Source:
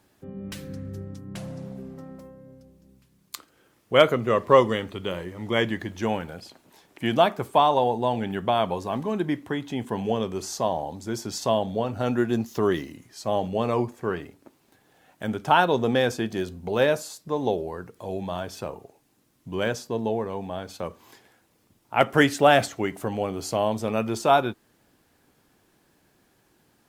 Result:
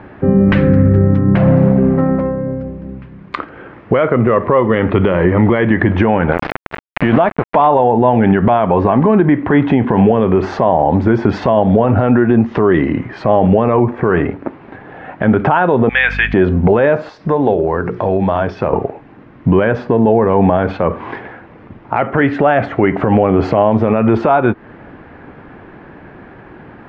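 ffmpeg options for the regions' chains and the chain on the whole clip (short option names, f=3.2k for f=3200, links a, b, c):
-filter_complex "[0:a]asettb=1/sr,asplit=3[a][b][c];[a]atrim=end=6.324[d];[b]atrim=start=6.32:end=7.67,asetpts=PTS-STARTPTS,afade=t=in:d=0.004:c=qsin,afade=t=out:st=1.346:d=0.004:c=qsin,acompressor=mode=upward:threshold=-22dB:ratio=2.5:attack=3.2:release=140:knee=2.83:detection=peak,aeval=exprs='val(0)*gte(abs(val(0)),0.0376)':c=same[e];[c]atrim=start=7.666[f];[d][e]acrossfade=d=0.004:c1=hsin:c2=qsin[g];[g][f]acrossfade=d=0.004:c1=qsin:c2=hsin,asettb=1/sr,asplit=3[h][i][j];[h]atrim=end=15.894[k];[i]atrim=start=15.89:end=16.34,asetpts=PTS-STARTPTS,afade=t=in:d=0.004:c=qsin,afade=t=out:st=0.446:d=0.004:c=qsin,highpass=f=2.2k:t=q:w=2.2,aeval=exprs='val(0)+0.00355*(sin(2*PI*50*n/s)+sin(2*PI*2*50*n/s)/2+sin(2*PI*3*50*n/s)/3+sin(2*PI*4*50*n/s)/4+sin(2*PI*5*50*n/s)/5)':c=same[l];[j]atrim=start=16.336[m];[k][l]acrossfade=d=0.004:c1=hsin:c2=qsin[n];[n][m]acrossfade=d=0.004:c1=qsin:c2=hsin,asettb=1/sr,asplit=3[o][p][q];[o]atrim=end=17.094[r];[p]atrim=start=17.09:end=18.73,asetpts=PTS-STARTPTS,afade=t=in:d=0.004:c=qsin,afade=t=out:st=1.636:d=0.004:c=qsin,equalizer=f=5.4k:w=2:g=14,bandreject=f=60:t=h:w=6,bandreject=f=120:t=h:w=6,bandreject=f=180:t=h:w=6,bandreject=f=240:t=h:w=6,bandreject=f=300:t=h:w=6,bandreject=f=360:t=h:w=6,bandreject=f=420:t=h:w=6,acompressor=threshold=-42dB:ratio=3:attack=3.2:release=140:knee=1:detection=peak[s];[q]atrim=start=18.726[t];[r][s]acrossfade=d=0.004:c1=hsin:c2=qsin[u];[u][t]acrossfade=d=0.004:c1=qsin:c2=hsin,lowpass=f=2.1k:w=0.5412,lowpass=f=2.1k:w=1.3066,acompressor=threshold=-30dB:ratio=10,alimiter=level_in=29dB:limit=-1dB:release=50:level=0:latency=1,volume=-1dB"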